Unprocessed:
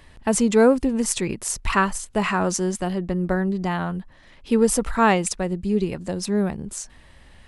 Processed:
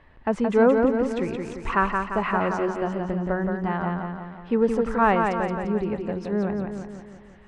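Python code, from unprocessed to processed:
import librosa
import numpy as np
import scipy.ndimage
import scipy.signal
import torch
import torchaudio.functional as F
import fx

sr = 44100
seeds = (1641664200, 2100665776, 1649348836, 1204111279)

y = scipy.signal.sosfilt(scipy.signal.butter(2, 1700.0, 'lowpass', fs=sr, output='sos'), x)
y = fx.low_shelf(y, sr, hz=360.0, db=-6.0)
y = fx.echo_feedback(y, sr, ms=173, feedback_pct=53, wet_db=-4.5)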